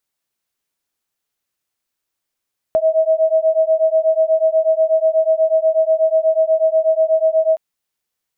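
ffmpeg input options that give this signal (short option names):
-f lavfi -i "aevalsrc='0.178*(sin(2*PI*636*t)+sin(2*PI*644.2*t))':d=4.82:s=44100"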